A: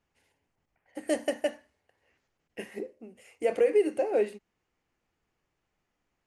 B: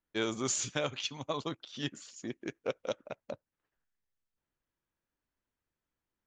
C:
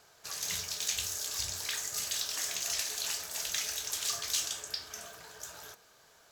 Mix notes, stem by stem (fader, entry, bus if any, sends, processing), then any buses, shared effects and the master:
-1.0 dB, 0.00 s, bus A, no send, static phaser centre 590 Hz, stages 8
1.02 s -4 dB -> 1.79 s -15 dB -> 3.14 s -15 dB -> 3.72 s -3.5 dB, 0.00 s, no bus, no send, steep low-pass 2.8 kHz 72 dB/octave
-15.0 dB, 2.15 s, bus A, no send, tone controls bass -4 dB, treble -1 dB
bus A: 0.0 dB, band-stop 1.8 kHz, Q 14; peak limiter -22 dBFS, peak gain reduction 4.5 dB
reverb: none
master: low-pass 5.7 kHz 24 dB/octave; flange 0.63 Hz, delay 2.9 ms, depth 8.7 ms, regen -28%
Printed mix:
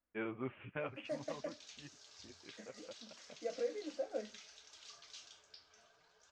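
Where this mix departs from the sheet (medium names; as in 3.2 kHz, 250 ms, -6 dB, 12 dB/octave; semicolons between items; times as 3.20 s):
stem A -1.0 dB -> -8.0 dB; stem C: entry 2.15 s -> 0.80 s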